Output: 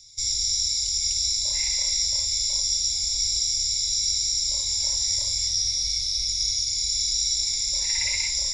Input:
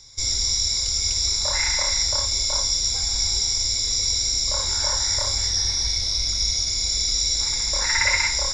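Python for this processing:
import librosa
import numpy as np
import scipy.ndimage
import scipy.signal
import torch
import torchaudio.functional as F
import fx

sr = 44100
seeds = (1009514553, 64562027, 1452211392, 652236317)

p1 = fx.curve_eq(x, sr, hz=(130.0, 970.0, 1400.0, 2300.0, 10000.0), db=(0, -10, -23, 3, 10))
p2 = p1 + fx.echo_single(p1, sr, ms=565, db=-14.5, dry=0)
y = F.gain(torch.from_numpy(p2), -9.0).numpy()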